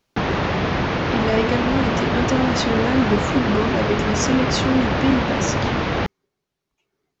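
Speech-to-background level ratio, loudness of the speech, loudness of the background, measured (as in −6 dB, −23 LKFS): −1.0 dB, −22.5 LKFS, −21.5 LKFS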